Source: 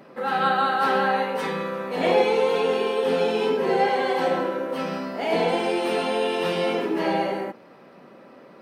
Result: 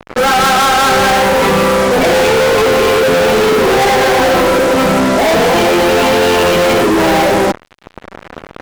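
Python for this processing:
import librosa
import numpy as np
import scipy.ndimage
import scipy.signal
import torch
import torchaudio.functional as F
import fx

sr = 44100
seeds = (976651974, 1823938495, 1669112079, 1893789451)

y = fx.spec_topn(x, sr, count=32)
y = fx.fuzz(y, sr, gain_db=42.0, gate_db=-43.0)
y = y * 10.0 ** (4.0 / 20.0)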